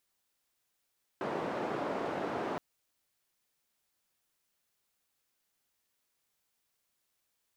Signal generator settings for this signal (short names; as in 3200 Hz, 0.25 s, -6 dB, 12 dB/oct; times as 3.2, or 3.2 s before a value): noise band 250–690 Hz, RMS -35.5 dBFS 1.37 s